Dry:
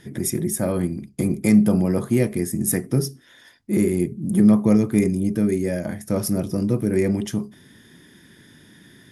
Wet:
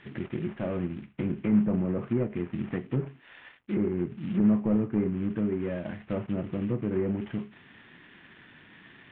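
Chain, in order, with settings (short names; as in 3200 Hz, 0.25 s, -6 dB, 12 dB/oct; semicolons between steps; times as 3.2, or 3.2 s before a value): CVSD 16 kbps; treble ducked by the level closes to 1400 Hz, closed at -16.5 dBFS; mismatched tape noise reduction encoder only; gain -7.5 dB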